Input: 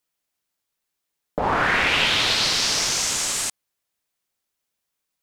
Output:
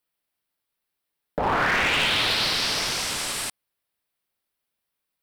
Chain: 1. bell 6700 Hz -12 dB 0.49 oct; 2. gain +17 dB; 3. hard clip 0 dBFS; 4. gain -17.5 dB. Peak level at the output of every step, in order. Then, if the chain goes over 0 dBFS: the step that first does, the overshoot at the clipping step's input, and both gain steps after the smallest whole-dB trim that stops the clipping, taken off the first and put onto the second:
-8.0, +9.0, 0.0, -17.5 dBFS; step 2, 9.0 dB; step 2 +8 dB, step 4 -8.5 dB

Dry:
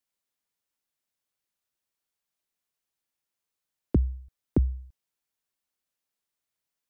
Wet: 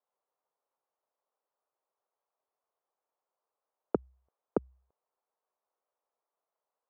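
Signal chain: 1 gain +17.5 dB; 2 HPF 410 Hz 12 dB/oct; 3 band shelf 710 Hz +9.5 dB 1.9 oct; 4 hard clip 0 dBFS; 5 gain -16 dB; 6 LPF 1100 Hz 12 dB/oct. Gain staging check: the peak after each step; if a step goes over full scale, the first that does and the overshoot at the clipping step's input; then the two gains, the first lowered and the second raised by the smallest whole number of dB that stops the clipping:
+4.0, -1.0, +6.0, 0.0, -16.0, -15.5 dBFS; step 1, 6.0 dB; step 1 +11.5 dB, step 5 -10 dB

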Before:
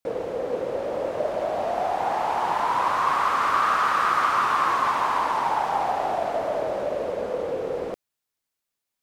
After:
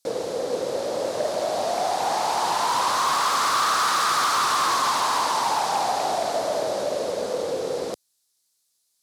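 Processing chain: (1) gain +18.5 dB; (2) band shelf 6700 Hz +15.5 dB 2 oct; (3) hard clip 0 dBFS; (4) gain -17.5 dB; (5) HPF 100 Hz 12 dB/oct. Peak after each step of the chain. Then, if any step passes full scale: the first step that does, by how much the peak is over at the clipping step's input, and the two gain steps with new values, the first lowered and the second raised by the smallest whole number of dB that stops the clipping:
+8.0, +9.5, 0.0, -17.5, -15.5 dBFS; step 1, 9.5 dB; step 1 +8.5 dB, step 4 -7.5 dB

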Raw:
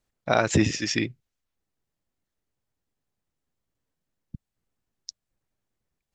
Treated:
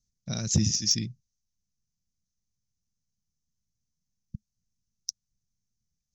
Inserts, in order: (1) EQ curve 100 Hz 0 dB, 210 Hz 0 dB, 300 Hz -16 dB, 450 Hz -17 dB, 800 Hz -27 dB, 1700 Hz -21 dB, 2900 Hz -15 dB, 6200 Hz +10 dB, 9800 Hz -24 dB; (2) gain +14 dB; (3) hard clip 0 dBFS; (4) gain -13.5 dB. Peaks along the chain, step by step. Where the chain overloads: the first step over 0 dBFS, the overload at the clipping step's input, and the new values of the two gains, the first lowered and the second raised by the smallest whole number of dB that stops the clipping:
-10.0, +4.0, 0.0, -13.5 dBFS; step 2, 4.0 dB; step 2 +10 dB, step 4 -9.5 dB

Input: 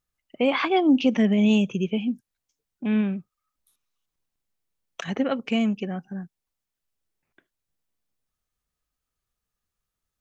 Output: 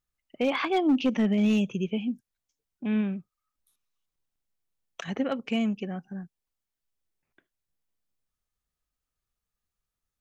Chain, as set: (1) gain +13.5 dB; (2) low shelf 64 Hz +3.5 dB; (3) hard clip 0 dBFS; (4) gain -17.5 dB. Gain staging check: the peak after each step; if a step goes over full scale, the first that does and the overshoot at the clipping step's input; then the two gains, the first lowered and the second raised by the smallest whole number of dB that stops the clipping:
+4.0, +4.0, 0.0, -17.5 dBFS; step 1, 4.0 dB; step 1 +9.5 dB, step 4 -13.5 dB

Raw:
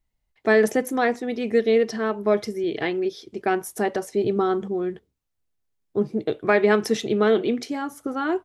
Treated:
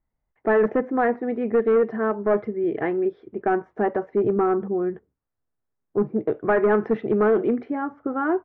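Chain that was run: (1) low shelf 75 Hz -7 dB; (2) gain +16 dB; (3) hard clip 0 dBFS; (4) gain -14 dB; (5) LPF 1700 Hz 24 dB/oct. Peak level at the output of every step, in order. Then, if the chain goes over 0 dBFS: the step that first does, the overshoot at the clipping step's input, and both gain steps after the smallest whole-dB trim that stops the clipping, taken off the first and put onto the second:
-6.0, +10.0, 0.0, -14.0, -12.5 dBFS; step 2, 10.0 dB; step 2 +6 dB, step 4 -4 dB

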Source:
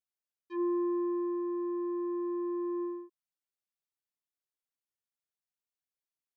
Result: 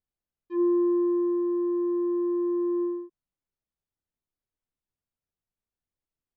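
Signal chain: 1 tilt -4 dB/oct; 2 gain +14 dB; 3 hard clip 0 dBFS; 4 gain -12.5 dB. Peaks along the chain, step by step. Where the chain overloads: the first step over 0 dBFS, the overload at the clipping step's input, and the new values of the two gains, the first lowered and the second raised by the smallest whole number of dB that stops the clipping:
-20.0, -6.0, -6.0, -18.5 dBFS; no overload

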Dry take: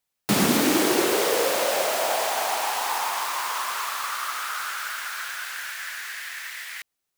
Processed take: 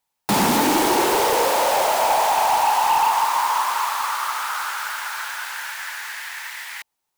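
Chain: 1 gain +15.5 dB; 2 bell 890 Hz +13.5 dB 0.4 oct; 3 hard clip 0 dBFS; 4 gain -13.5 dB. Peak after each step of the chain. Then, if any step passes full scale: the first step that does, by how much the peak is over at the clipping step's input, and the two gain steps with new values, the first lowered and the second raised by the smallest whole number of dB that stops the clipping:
+8.0, +9.0, 0.0, -13.5 dBFS; step 1, 9.0 dB; step 1 +6.5 dB, step 4 -4.5 dB

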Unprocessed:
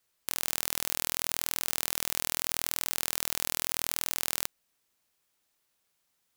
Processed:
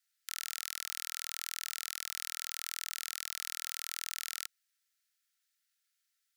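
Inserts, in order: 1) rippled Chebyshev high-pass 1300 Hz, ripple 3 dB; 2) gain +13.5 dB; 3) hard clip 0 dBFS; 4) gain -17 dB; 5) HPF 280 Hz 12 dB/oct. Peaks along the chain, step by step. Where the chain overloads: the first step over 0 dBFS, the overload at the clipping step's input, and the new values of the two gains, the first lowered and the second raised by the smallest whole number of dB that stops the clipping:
-9.0, +4.5, 0.0, -17.0, -17.0 dBFS; step 2, 4.5 dB; step 2 +8.5 dB, step 4 -12 dB

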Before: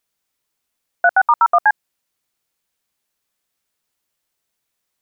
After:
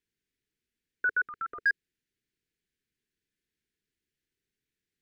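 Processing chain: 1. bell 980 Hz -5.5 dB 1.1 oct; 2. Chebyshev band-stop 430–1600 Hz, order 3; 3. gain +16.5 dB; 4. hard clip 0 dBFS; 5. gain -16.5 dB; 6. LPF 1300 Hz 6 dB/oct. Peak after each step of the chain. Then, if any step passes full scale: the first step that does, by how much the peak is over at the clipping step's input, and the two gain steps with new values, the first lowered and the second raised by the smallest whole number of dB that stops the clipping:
-7.5, -13.0, +3.5, 0.0, -16.5, -19.0 dBFS; step 3, 3.5 dB; step 3 +12.5 dB, step 5 -12.5 dB

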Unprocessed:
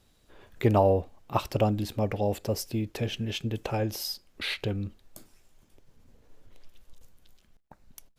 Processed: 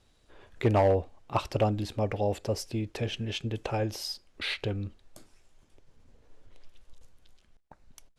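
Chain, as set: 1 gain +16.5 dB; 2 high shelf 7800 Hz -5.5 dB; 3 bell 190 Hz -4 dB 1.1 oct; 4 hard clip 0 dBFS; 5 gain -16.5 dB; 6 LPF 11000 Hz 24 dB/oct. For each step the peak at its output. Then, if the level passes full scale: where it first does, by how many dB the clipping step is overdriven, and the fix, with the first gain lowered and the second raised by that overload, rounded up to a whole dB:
+7.0, +6.5, +6.0, 0.0, -16.5, -16.0 dBFS; step 1, 6.0 dB; step 1 +10.5 dB, step 5 -10.5 dB

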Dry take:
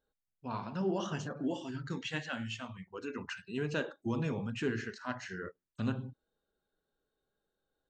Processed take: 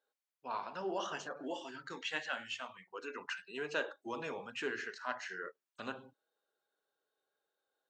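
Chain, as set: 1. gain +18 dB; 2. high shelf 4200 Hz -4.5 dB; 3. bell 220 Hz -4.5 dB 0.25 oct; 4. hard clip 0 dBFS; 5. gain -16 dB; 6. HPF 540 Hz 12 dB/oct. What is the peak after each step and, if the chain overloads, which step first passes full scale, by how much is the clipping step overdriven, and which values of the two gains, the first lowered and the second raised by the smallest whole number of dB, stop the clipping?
-1.5, -2.0, -2.0, -2.0, -18.0, -23.0 dBFS; no overload

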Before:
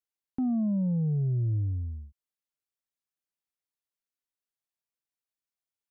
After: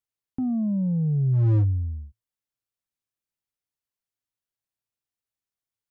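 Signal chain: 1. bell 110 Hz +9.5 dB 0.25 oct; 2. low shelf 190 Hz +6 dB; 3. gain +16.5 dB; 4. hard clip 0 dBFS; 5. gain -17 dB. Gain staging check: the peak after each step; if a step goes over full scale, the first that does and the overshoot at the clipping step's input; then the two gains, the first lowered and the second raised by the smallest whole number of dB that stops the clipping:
-14.5, -10.0, +6.5, 0.0, -17.0 dBFS; step 3, 6.5 dB; step 3 +9.5 dB, step 5 -10 dB

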